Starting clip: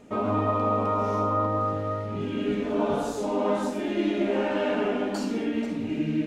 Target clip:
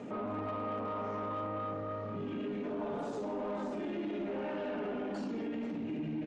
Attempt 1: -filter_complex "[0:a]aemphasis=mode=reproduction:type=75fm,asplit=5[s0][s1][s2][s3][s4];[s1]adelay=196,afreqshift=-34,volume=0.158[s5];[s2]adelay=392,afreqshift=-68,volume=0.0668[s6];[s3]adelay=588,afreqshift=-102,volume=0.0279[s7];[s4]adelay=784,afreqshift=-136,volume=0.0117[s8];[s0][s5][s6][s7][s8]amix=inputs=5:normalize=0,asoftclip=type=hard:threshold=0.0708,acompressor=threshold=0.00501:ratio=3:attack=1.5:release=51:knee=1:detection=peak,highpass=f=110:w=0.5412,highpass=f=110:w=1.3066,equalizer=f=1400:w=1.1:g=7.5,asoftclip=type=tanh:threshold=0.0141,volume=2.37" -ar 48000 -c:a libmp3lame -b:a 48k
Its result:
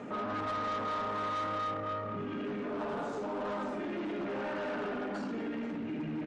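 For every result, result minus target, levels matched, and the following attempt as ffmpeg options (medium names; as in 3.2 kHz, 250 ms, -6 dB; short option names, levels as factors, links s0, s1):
hard clipper: distortion +18 dB; 1 kHz band +3.0 dB
-filter_complex "[0:a]aemphasis=mode=reproduction:type=75fm,asplit=5[s0][s1][s2][s3][s4];[s1]adelay=196,afreqshift=-34,volume=0.158[s5];[s2]adelay=392,afreqshift=-68,volume=0.0668[s6];[s3]adelay=588,afreqshift=-102,volume=0.0279[s7];[s4]adelay=784,afreqshift=-136,volume=0.0117[s8];[s0][s5][s6][s7][s8]amix=inputs=5:normalize=0,asoftclip=type=hard:threshold=0.15,acompressor=threshold=0.00501:ratio=3:attack=1.5:release=51:knee=1:detection=peak,highpass=f=110:w=0.5412,highpass=f=110:w=1.3066,equalizer=f=1400:w=1.1:g=7.5,asoftclip=type=tanh:threshold=0.0141,volume=2.37" -ar 48000 -c:a libmp3lame -b:a 48k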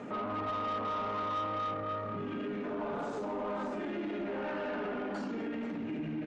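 1 kHz band +3.0 dB
-filter_complex "[0:a]aemphasis=mode=reproduction:type=75fm,asplit=5[s0][s1][s2][s3][s4];[s1]adelay=196,afreqshift=-34,volume=0.158[s5];[s2]adelay=392,afreqshift=-68,volume=0.0668[s6];[s3]adelay=588,afreqshift=-102,volume=0.0279[s7];[s4]adelay=784,afreqshift=-136,volume=0.0117[s8];[s0][s5][s6][s7][s8]amix=inputs=5:normalize=0,asoftclip=type=hard:threshold=0.15,acompressor=threshold=0.00501:ratio=3:attack=1.5:release=51:knee=1:detection=peak,highpass=f=110:w=0.5412,highpass=f=110:w=1.3066,asoftclip=type=tanh:threshold=0.0141,volume=2.37" -ar 48000 -c:a libmp3lame -b:a 48k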